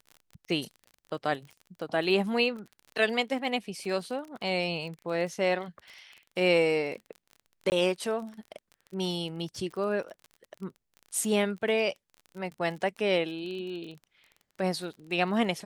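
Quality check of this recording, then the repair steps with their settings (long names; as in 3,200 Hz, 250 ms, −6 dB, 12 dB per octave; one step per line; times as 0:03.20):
surface crackle 30 per second −38 dBFS
0:07.70–0:07.72: drop-out 19 ms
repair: click removal
repair the gap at 0:07.70, 19 ms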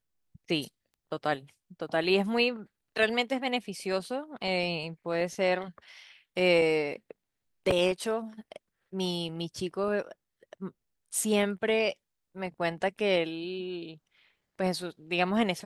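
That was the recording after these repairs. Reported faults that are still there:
none of them is left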